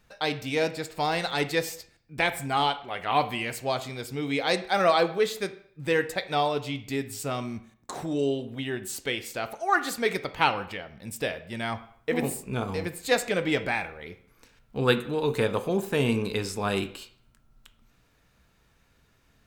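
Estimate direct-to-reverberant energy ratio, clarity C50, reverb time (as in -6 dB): 10.0 dB, 14.0 dB, 0.55 s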